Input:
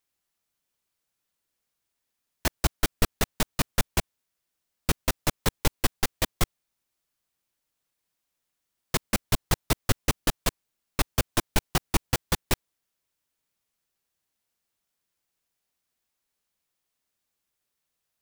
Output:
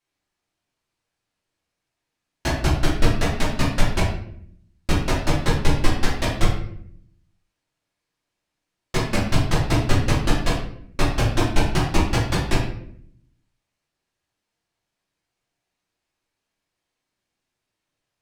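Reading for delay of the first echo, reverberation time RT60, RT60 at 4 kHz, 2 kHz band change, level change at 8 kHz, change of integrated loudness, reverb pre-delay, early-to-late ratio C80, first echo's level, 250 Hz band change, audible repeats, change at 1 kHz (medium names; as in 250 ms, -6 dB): no echo, 0.65 s, 0.45 s, +5.5 dB, -2.0 dB, +5.5 dB, 3 ms, 7.5 dB, no echo, +8.5 dB, no echo, +6.0 dB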